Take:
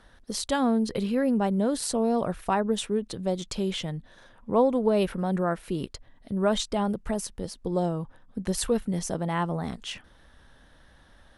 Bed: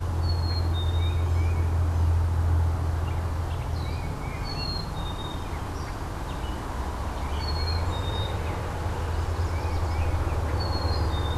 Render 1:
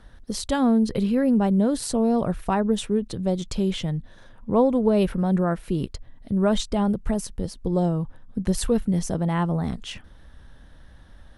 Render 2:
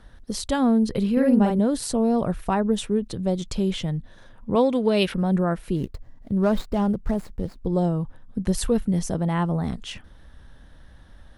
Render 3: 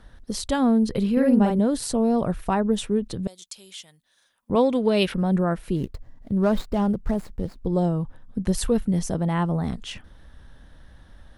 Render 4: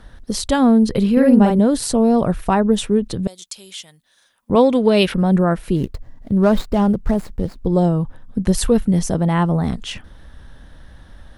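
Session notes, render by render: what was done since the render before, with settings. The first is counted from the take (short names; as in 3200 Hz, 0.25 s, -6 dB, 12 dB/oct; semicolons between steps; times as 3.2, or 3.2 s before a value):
low shelf 230 Hz +10.5 dB
1.12–1.59 doubler 49 ms -2.5 dB; 4.55–5.14 weighting filter D; 5.76–7.66 median filter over 15 samples
3.27–4.5 differentiator
gain +6.5 dB; limiter -2 dBFS, peak gain reduction 1 dB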